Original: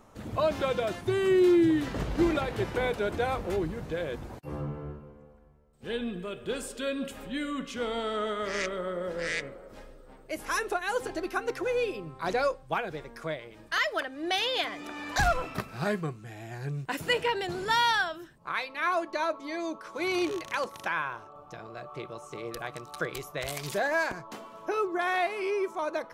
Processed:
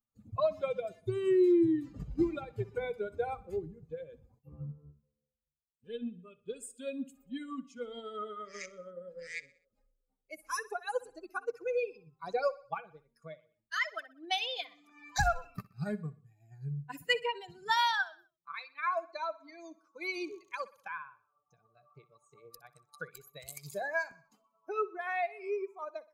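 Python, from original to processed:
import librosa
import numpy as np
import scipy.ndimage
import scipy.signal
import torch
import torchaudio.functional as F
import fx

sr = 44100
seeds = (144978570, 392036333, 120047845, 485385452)

p1 = fx.bin_expand(x, sr, power=2.0)
p2 = fx.transient(p1, sr, attack_db=3, sustain_db=-2)
p3 = p2 + fx.echo_feedback(p2, sr, ms=62, feedback_pct=46, wet_db=-19.5, dry=0)
y = p3 * librosa.db_to_amplitude(-2.0)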